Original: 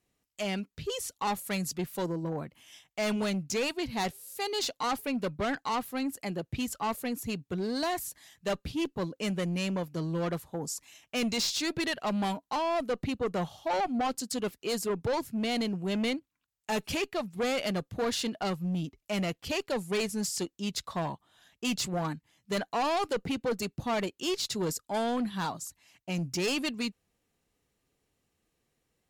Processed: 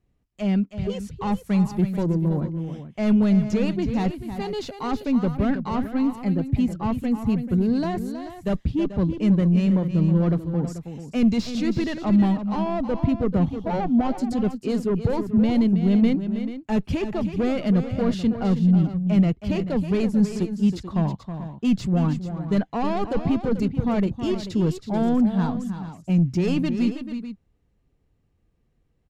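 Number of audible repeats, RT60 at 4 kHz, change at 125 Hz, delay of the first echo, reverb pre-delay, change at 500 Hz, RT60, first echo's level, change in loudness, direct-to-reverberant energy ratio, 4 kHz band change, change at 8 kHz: 2, no reverb, +14.5 dB, 321 ms, no reverb, +4.5 dB, no reverb, -10.0 dB, +9.0 dB, no reverb, -5.5 dB, no reading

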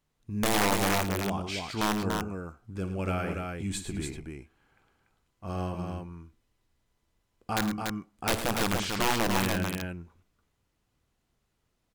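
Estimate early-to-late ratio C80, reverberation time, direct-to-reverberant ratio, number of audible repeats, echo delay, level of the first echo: no reverb, no reverb, no reverb, 3, 52 ms, -14.0 dB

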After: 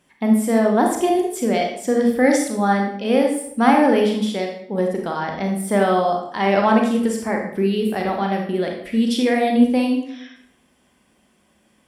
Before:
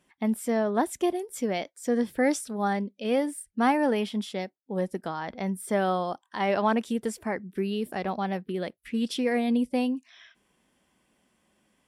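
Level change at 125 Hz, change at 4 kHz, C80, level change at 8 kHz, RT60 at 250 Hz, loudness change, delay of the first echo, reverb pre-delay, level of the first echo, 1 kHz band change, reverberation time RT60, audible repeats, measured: +8.5 dB, +8.0 dB, 7.5 dB, +8.0 dB, 0.80 s, +9.0 dB, no echo, 32 ms, no echo, +9.0 dB, 0.70 s, no echo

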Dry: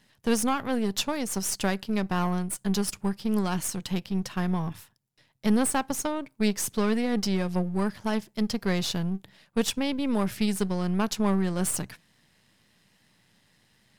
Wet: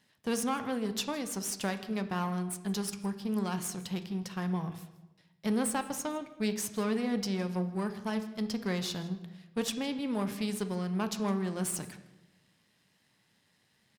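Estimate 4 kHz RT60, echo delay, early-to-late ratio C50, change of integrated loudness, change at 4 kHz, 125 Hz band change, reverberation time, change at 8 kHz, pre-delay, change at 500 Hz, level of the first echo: 0.75 s, 161 ms, 11.5 dB, -6.0 dB, -5.5 dB, -6.0 dB, 1.0 s, -6.0 dB, 10 ms, -5.5 dB, -20.0 dB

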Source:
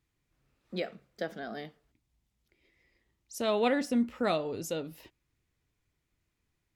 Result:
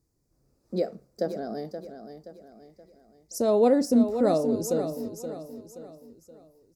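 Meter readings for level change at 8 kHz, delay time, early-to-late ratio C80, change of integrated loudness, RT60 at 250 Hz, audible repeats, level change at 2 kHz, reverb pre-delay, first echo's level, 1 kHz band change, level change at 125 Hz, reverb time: +6.5 dB, 525 ms, no reverb, +6.5 dB, no reverb, 4, -8.0 dB, no reverb, -9.5 dB, +3.0 dB, +7.0 dB, no reverb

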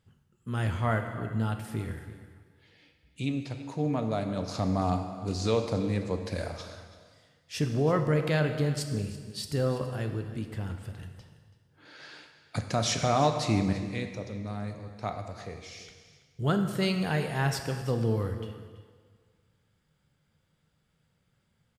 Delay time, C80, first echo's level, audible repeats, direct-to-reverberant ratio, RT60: 332 ms, 8.5 dB, -16.5 dB, 1, 5.5 dB, 1.6 s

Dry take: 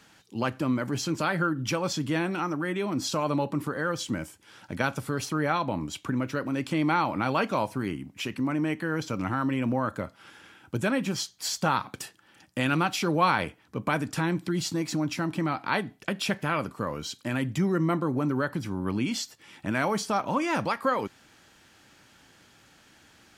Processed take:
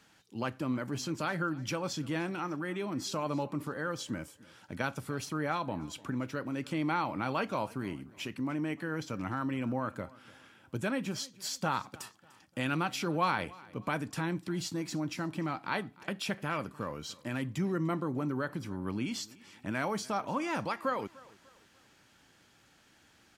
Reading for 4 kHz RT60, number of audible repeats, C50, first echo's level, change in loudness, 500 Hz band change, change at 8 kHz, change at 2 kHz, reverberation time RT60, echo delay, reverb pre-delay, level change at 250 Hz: no reverb, 2, no reverb, -22.0 dB, -6.5 dB, -6.5 dB, -6.5 dB, -6.5 dB, no reverb, 297 ms, no reverb, -6.5 dB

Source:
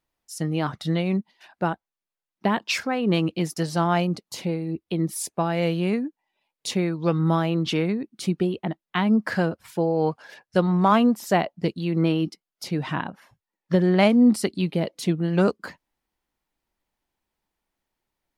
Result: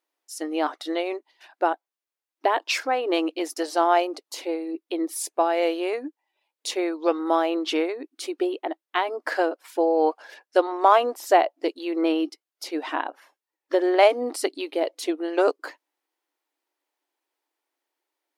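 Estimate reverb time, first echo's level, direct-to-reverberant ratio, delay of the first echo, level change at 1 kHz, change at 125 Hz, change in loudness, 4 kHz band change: no reverb, no echo, no reverb, no echo, +4.0 dB, under -40 dB, -1.0 dB, 0.0 dB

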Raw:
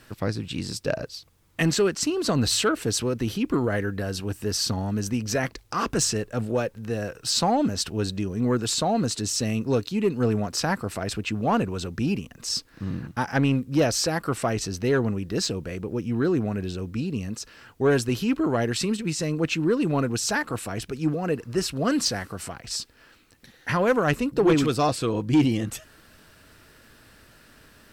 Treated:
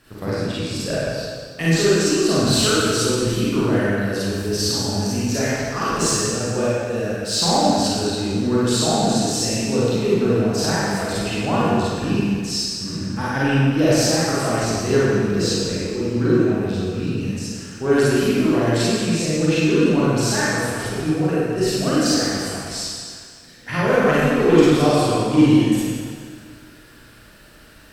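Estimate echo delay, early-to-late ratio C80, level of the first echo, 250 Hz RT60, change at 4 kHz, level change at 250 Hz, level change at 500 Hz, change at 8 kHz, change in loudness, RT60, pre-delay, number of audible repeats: no echo, -2.5 dB, no echo, 1.9 s, +6.0 dB, +6.5 dB, +6.5 dB, +5.5 dB, +6.0 dB, 1.9 s, 35 ms, no echo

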